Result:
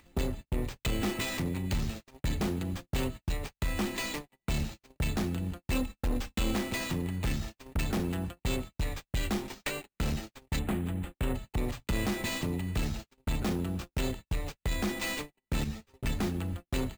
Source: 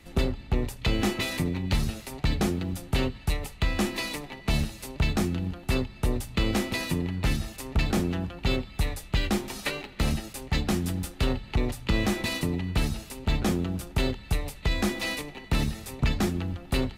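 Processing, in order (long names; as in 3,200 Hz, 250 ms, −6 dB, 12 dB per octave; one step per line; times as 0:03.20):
stylus tracing distortion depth 0.05 ms
hum removal 161.9 Hz, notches 11
noise gate −34 dBFS, range −54 dB
upward compression, threshold −26 dBFS
0:05.72–0:06.55: comb filter 3.8 ms, depth 82%
0:10.59–0:11.35: inverse Chebyshev low-pass filter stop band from 6,200 Hz, stop band 40 dB
bad sample-rate conversion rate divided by 4×, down none, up hold
soft clipping −21.5 dBFS, distortion −14 dB
0:15.64–0:16.06: string-ensemble chorus
level −2.5 dB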